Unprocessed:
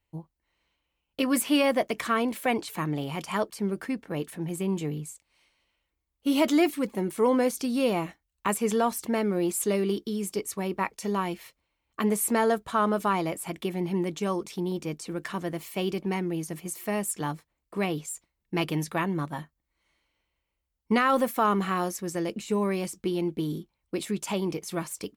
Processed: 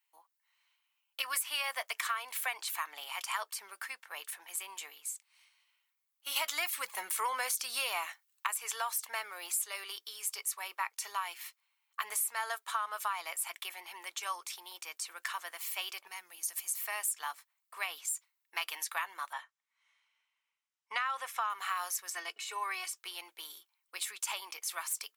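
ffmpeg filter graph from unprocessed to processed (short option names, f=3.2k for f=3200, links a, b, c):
-filter_complex "[0:a]asettb=1/sr,asplit=3[a][b][c];[a]atrim=end=6.364[d];[b]atrim=start=6.36:end=8.47,asetpts=PTS-STARTPTS,afade=t=in:d=0.004:c=qsin,afade=t=out:st=2.106:d=0.004:c=qsin,equalizer=f=180:w=2.5:g=9.5,acontrast=64[e];[c]atrim=start=8.466[f];[d][e]acrossfade=d=0.004:c1=hsin:c2=qsin[g];[g][f]acrossfade=d=0.004:c1=qsin:c2=hsin,asettb=1/sr,asplit=3[h][i][j];[h]atrim=end=16.074[k];[i]atrim=start=16.07:end=16.69,asetpts=PTS-STARTPTS,afade=t=in:d=0.004:c=qsin,afade=t=out:st=0.616:d=0.004:c=qsin,bass=f=250:g=14,treble=f=4k:g=9,bandreject=f=50:t=h:w=6,bandreject=f=100:t=h:w=6,bandreject=f=150:t=h:w=6,bandreject=f=200:t=h:w=6,bandreject=f=250:t=h:w=6,bandreject=f=300:t=h:w=6,bandreject=f=350:t=h:w=6,bandreject=f=400:t=h:w=6,bandreject=f=450:t=h:w=6,acompressor=threshold=-28dB:ratio=6:attack=3.2:release=140:knee=1:detection=peak[l];[j]atrim=start=16.686[m];[k][l]acrossfade=d=0.004:c1=hsin:c2=qsin[n];[n][m]acrossfade=d=0.004:c1=qsin:c2=hsin,asettb=1/sr,asplit=3[o][p][q];[o]atrim=end=19.334[r];[p]atrim=start=19.33:end=21.5,asetpts=PTS-STARTPTS,afade=t=in:d=0.004:c=qsin,afade=t=out:st=2.166:d=0.004:c=qsin,highpass=120,lowpass=6.3k,bandreject=f=4.4k:w=7.7[s];[q]atrim=start=21.496[t];[r][s]acrossfade=d=0.004:c1=hsin:c2=qsin[u];[u][t]acrossfade=d=0.004:c1=qsin:c2=hsin,asettb=1/sr,asplit=3[v][w][x];[v]atrim=end=22.104[y];[w]atrim=start=22.1:end=22.97,asetpts=PTS-STARTPTS,afade=t=in:d=0.004:c=qsin,afade=t=out:st=0.866:d=0.004:c=qsin,highshelf=f=7.1k:g=-10.5,aecho=1:1:2.7:0.83,atrim=end_sample=38367[z];[x]atrim=start=22.966[aa];[y][z]acrossfade=d=0.004:c1=hsin:c2=qsin[ab];[ab][aa]acrossfade=d=0.004:c1=qsin:c2=hsin,highpass=f=980:w=0.5412,highpass=f=980:w=1.3066,highshelf=f=9.3k:g=8,acompressor=threshold=-30dB:ratio=10"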